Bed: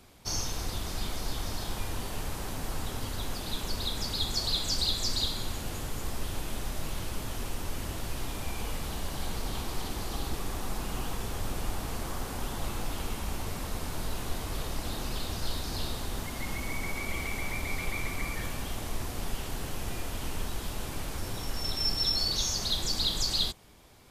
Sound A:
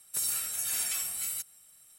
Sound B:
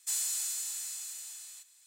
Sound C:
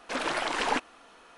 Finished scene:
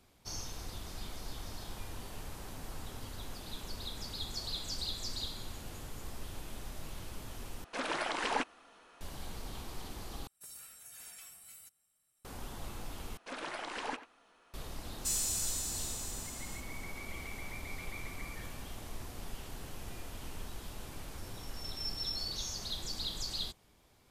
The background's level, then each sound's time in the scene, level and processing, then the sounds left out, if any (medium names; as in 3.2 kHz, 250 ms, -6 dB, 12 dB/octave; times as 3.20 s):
bed -9.5 dB
7.64 s: replace with C -5.5 dB
10.27 s: replace with A -13.5 dB + treble shelf 2.2 kHz -6.5 dB
13.17 s: replace with C -11.5 dB + speakerphone echo 90 ms, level -12 dB
14.98 s: add B -2 dB + peaking EQ 5.6 kHz +6 dB 0.21 oct